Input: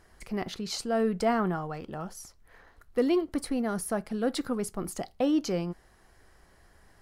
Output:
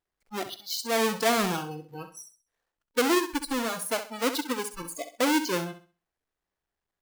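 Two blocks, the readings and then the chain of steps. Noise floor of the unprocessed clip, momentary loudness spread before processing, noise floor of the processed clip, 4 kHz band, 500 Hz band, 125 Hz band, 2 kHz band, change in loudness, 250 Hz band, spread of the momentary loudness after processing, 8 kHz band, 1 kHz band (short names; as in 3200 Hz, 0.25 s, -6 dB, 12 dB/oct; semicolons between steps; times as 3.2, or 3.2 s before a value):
-61 dBFS, 12 LU, under -85 dBFS, +8.0 dB, +0.5 dB, -3.5 dB, +9.0 dB, +2.0 dB, -1.5 dB, 15 LU, +6.5 dB, +4.5 dB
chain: half-waves squared off; spectral noise reduction 29 dB; low shelf 220 Hz -11 dB; on a send: flutter echo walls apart 11.2 m, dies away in 0.36 s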